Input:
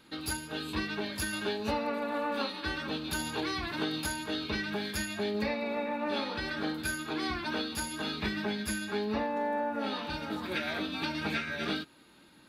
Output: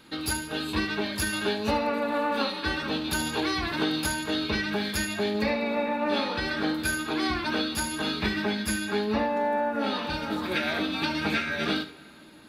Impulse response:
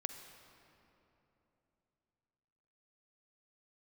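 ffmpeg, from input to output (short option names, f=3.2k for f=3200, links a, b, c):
-filter_complex "[0:a]asplit=2[a][b];[1:a]atrim=start_sample=2205,adelay=74[c];[b][c]afir=irnorm=-1:irlink=0,volume=-11dB[d];[a][d]amix=inputs=2:normalize=0,volume=5.5dB"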